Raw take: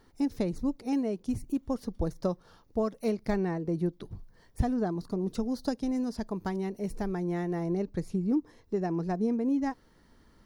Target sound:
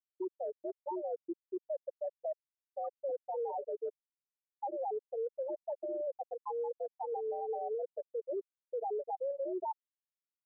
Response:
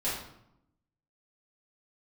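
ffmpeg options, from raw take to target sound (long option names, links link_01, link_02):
-af "highpass=frequency=480:width_type=q:width=0.5412,highpass=frequency=480:width_type=q:width=1.307,lowpass=frequency=2900:width_type=q:width=0.5176,lowpass=frequency=2900:width_type=q:width=0.7071,lowpass=frequency=2900:width_type=q:width=1.932,afreqshift=88,aresample=16000,asoftclip=type=hard:threshold=-36.5dB,aresample=44100,tiltshelf=frequency=830:gain=5.5,afftfilt=real='re*gte(hypot(re,im),0.0631)':imag='im*gte(hypot(re,im),0.0631)':win_size=1024:overlap=0.75,areverse,acompressor=threshold=-47dB:ratio=6,areverse,alimiter=level_in=25dB:limit=-24dB:level=0:latency=1:release=221,volume=-25dB,volume=18dB"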